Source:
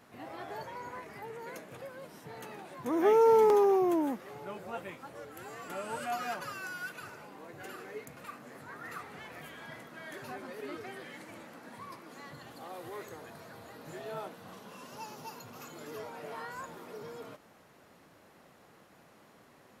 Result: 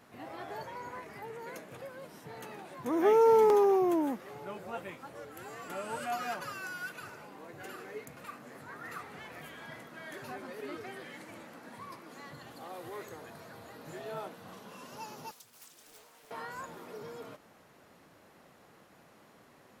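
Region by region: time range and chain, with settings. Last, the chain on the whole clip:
0:15.31–0:16.31: first-order pre-emphasis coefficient 0.9 + highs frequency-modulated by the lows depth 0.56 ms
whole clip: no processing

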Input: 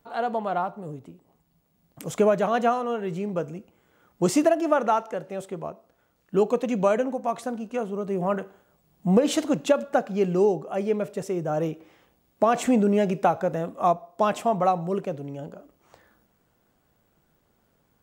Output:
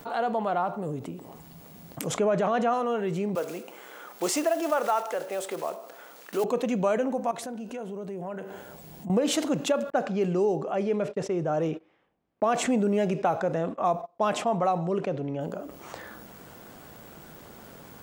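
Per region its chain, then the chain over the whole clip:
0:02.07–0:02.74: low-pass filter 10,000 Hz + high-shelf EQ 4,300 Hz −6 dB + transient designer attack −1 dB, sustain +5 dB
0:03.35–0:06.44: one scale factor per block 5 bits + high-pass filter 430 Hz
0:07.31–0:09.10: notch filter 1,200 Hz, Q 5.9 + downward compressor 3 to 1, threshold −47 dBFS
0:09.90–0:15.41: low-pass that shuts in the quiet parts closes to 2,400 Hz, open at −17 dBFS + noise gate −43 dBFS, range −43 dB
whole clip: low-shelf EQ 89 Hz −10 dB; envelope flattener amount 50%; level −5.5 dB

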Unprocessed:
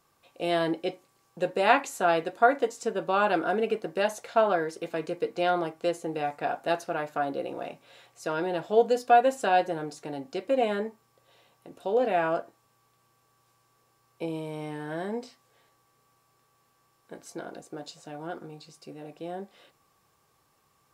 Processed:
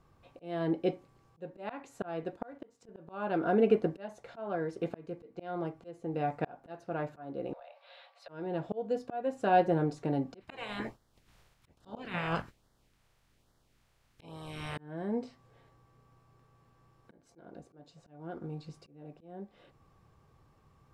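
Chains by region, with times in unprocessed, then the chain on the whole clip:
0:02.36–0:02.89: mu-law and A-law mismatch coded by A + high-pass filter 75 Hz + downward compressor 1.5 to 1, threshold −35 dBFS
0:07.53–0:08.29: Butterworth high-pass 530 Hz 72 dB per octave + high shelf with overshoot 5,300 Hz −8 dB, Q 3 + downward compressor 8 to 1, threshold −46 dBFS
0:10.40–0:14.76: ceiling on every frequency bin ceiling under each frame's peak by 29 dB + auto-filter notch sine 1.2 Hz 240–2,600 Hz
whole clip: RIAA equalisation playback; volume swells 642 ms

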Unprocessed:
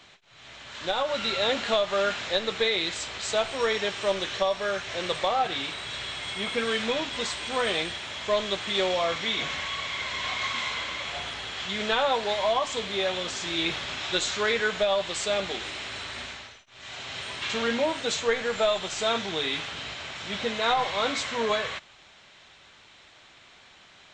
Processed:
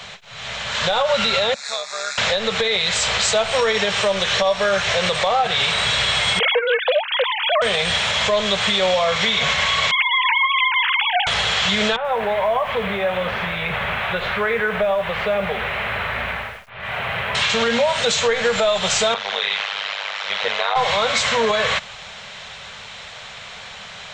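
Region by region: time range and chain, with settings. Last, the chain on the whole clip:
0:01.54–0:02.18: first difference + amplitude modulation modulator 140 Hz, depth 45% + Butterworth band-reject 3,000 Hz, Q 2.5
0:06.39–0:07.62: three sine waves on the formant tracks + highs frequency-modulated by the lows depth 0.11 ms
0:09.91–0:11.27: three sine waves on the formant tracks + mains-hum notches 60/120/180/240/300/360/420/480/540 Hz
0:11.96–0:17.35: low-pass filter 2,400 Hz 24 dB per octave + downward compressor 3 to 1, threshold −37 dBFS + feedback echo at a low word length 84 ms, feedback 35%, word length 9 bits, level −14.5 dB
0:19.14–0:20.76: high-pass filter 690 Hz + amplitude modulation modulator 100 Hz, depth 95% + high-frequency loss of the air 130 metres
whole clip: Chebyshev band-stop filter 210–450 Hz, order 2; downward compressor, threshold −31 dBFS; boost into a limiter +26.5 dB; level −8.5 dB

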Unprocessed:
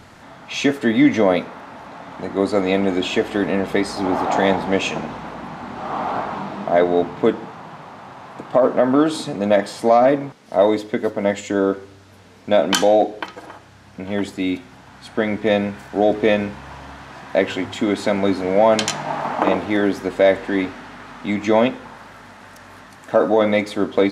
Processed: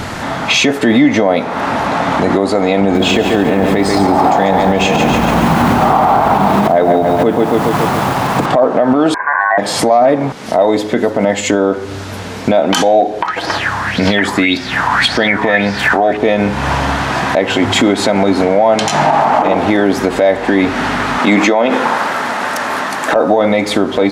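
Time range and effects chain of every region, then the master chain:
0:02.81–0:08.46: low-shelf EQ 180 Hz +7.5 dB + feedback echo at a low word length 140 ms, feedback 55%, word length 7 bits, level −7 dB
0:09.14–0:09.58: Bessel low-pass filter 530 Hz, order 6 + ring modulation 1,300 Hz
0:13.22–0:16.17: parametric band 1,800 Hz +6.5 dB 0.29 octaves + auto-filter bell 1.8 Hz 970–5,100 Hz +18 dB
0:21.18–0:23.16: high-pass filter 230 Hz + parametric band 940 Hz +4 dB 2.2 octaves + downward compressor 10 to 1, threshold −20 dBFS
whole clip: dynamic equaliser 770 Hz, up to +6 dB, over −31 dBFS, Q 2.3; downward compressor 8 to 1, threshold −26 dBFS; boost into a limiter +23 dB; level −1 dB

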